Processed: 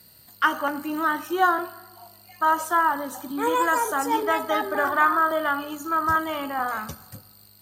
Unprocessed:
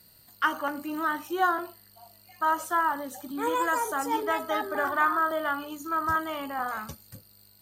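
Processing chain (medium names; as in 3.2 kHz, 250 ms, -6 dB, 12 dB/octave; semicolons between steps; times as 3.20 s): high-pass 50 Hz; on a send: reverberation RT60 1.3 s, pre-delay 64 ms, DRR 18.5 dB; on the sum: trim +4.5 dB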